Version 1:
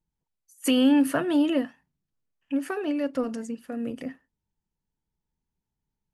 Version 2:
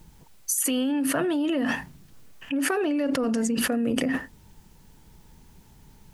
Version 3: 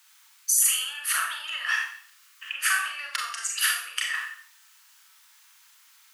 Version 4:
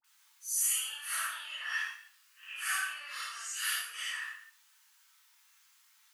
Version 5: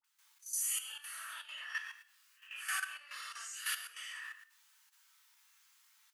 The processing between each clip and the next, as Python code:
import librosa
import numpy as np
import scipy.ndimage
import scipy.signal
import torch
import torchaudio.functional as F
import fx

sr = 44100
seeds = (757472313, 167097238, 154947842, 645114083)

y1 = fx.env_flatten(x, sr, amount_pct=100)
y1 = F.gain(torch.from_numpy(y1), -8.0).numpy()
y2 = scipy.signal.sosfilt(scipy.signal.cheby1(4, 1.0, 1200.0, 'highpass', fs=sr, output='sos'), y1)
y2 = fx.rev_schroeder(y2, sr, rt60_s=0.52, comb_ms=29, drr_db=0.0)
y2 = F.gain(torch.from_numpy(y2), 3.5).numpy()
y3 = fx.phase_scramble(y2, sr, seeds[0], window_ms=200)
y3 = fx.dispersion(y3, sr, late='highs', ms=44.0, hz=1200.0)
y3 = F.gain(torch.from_numpy(y3), -8.5).numpy()
y4 = fx.level_steps(y3, sr, step_db=11)
y4 = F.gain(torch.from_numpy(y4), -2.0).numpy()